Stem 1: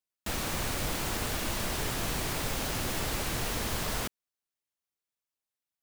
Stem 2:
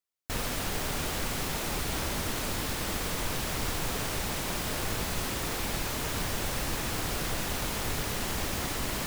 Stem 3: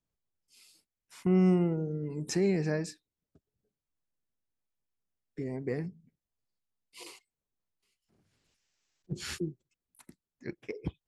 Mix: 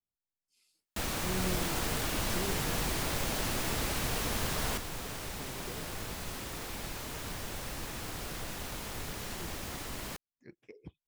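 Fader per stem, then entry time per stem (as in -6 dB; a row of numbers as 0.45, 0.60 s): -1.5, -8.0, -13.0 dB; 0.70, 1.10, 0.00 s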